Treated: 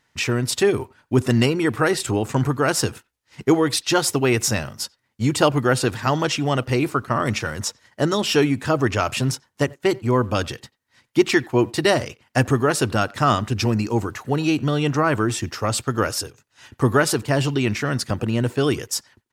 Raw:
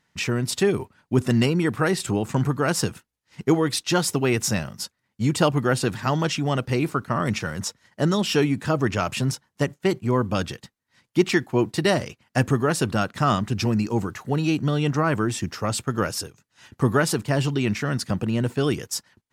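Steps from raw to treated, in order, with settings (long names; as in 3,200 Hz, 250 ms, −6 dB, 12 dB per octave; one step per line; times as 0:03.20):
parametric band 180 Hz −13.5 dB 0.3 octaves
far-end echo of a speakerphone 90 ms, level −24 dB
level +3.5 dB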